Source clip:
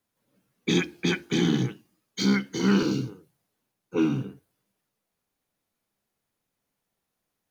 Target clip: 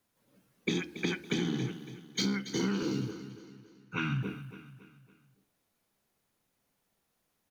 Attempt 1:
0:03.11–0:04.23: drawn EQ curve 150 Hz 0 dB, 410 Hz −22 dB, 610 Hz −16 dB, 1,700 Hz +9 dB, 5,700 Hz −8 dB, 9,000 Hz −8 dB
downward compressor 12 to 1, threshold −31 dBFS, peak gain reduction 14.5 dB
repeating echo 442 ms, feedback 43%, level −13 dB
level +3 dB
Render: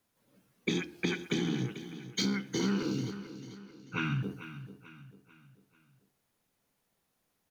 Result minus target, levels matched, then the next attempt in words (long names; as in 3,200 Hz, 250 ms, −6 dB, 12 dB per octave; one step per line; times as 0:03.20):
echo 162 ms late
0:03.11–0:04.23: drawn EQ curve 150 Hz 0 dB, 410 Hz −22 dB, 610 Hz −16 dB, 1,700 Hz +9 dB, 5,700 Hz −8 dB, 9,000 Hz −8 dB
downward compressor 12 to 1, threshold −31 dBFS, peak gain reduction 14.5 dB
repeating echo 280 ms, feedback 43%, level −13 dB
level +3 dB